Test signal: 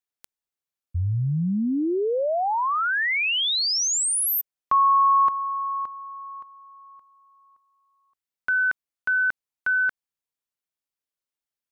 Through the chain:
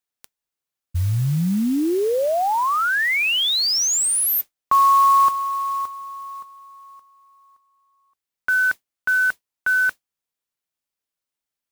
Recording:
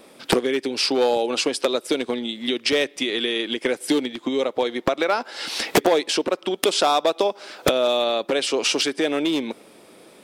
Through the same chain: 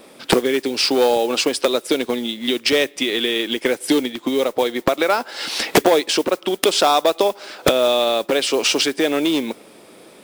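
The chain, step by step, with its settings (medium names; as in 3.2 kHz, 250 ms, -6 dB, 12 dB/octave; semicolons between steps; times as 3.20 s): modulation noise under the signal 21 dB; trim +3.5 dB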